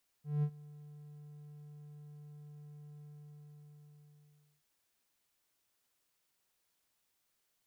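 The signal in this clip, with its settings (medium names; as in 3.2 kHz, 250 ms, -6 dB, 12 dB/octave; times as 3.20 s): ADSR triangle 148 Hz, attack 190 ms, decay 68 ms, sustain -22 dB, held 2.78 s, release 1610 ms -25.5 dBFS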